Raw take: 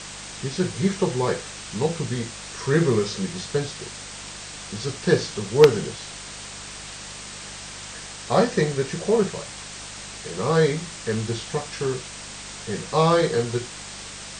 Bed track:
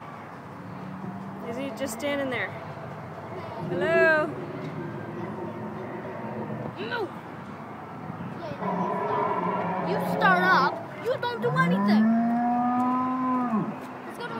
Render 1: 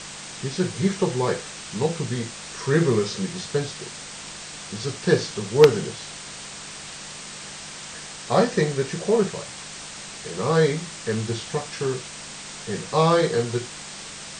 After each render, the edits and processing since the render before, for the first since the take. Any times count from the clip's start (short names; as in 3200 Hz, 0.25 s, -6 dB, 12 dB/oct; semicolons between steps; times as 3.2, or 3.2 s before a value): de-hum 50 Hz, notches 2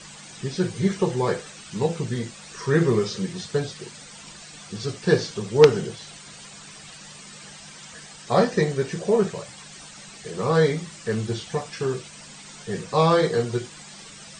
denoiser 11 dB, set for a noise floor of -38 dBFS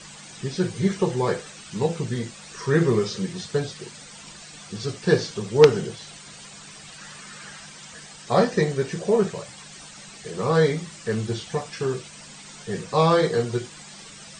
6.98–7.66 bell 1500 Hz +8.5 dB 0.83 oct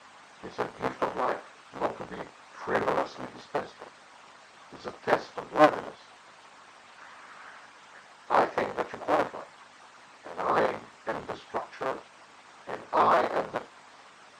cycle switcher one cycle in 3, inverted; band-pass 1000 Hz, Q 1.3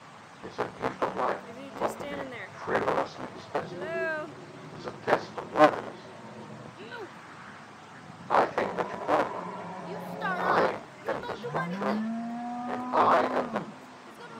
add bed track -11 dB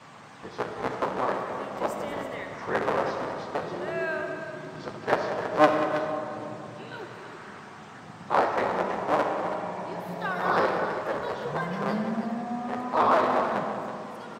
tapped delay 0.187/0.324 s -13/-10.5 dB; digital reverb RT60 3 s, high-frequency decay 0.3×, pre-delay 25 ms, DRR 5 dB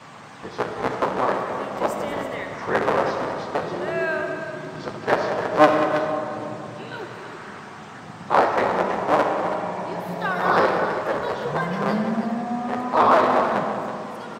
gain +5.5 dB; limiter -3 dBFS, peak gain reduction 2 dB